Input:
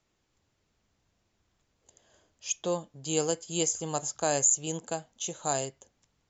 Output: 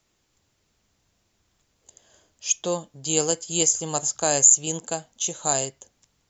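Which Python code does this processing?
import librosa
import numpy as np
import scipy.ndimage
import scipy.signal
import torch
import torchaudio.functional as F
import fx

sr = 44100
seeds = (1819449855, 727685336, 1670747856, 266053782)

y = fx.high_shelf(x, sr, hz=4000.0, db=7.5)
y = F.gain(torch.from_numpy(y), 3.5).numpy()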